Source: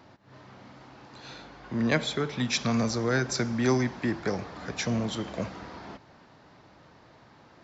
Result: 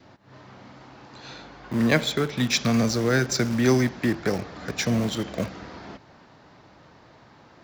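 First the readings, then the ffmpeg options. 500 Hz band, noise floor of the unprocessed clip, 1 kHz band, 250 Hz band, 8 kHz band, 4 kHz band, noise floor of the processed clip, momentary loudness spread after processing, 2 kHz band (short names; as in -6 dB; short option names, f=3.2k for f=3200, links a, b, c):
+4.5 dB, -56 dBFS, +2.5 dB, +5.0 dB, n/a, +5.0 dB, -53 dBFS, 20 LU, +4.5 dB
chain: -filter_complex "[0:a]adynamicequalizer=threshold=0.00355:dfrequency=950:dqfactor=2.1:tfrequency=950:tqfactor=2.1:attack=5:release=100:ratio=0.375:range=3:mode=cutabove:tftype=bell,asplit=2[a][b];[b]acrusher=bits=4:mix=0:aa=0.000001,volume=-12dB[c];[a][c]amix=inputs=2:normalize=0,volume=3dB"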